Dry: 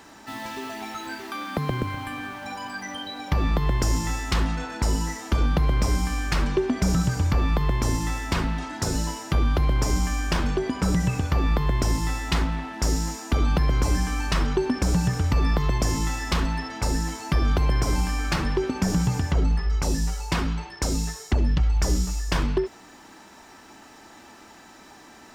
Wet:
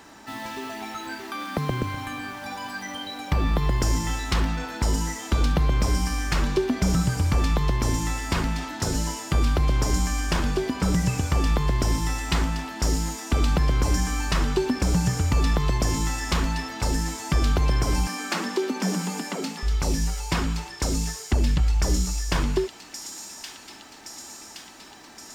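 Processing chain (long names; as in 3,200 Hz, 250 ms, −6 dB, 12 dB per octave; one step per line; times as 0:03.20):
0:18.07–0:19.63: Butterworth high-pass 180 Hz 96 dB per octave
on a send: delay with a high-pass on its return 1,120 ms, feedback 66%, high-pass 3,400 Hz, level −4 dB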